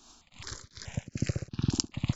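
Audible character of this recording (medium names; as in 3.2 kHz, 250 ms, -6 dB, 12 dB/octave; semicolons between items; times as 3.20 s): tremolo triangle 2.5 Hz, depth 100%; notches that jump at a steady rate 4.7 Hz 540–3600 Hz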